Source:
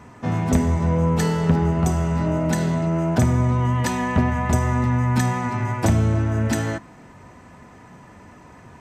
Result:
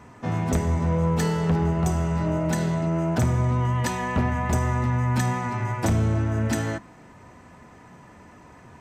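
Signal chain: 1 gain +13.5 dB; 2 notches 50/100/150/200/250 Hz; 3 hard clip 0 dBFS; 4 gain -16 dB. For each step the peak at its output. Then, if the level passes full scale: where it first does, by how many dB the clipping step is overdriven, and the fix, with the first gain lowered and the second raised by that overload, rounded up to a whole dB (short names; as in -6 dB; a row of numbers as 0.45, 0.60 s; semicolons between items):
+7.0, +6.0, 0.0, -16.0 dBFS; step 1, 6.0 dB; step 1 +7.5 dB, step 4 -10 dB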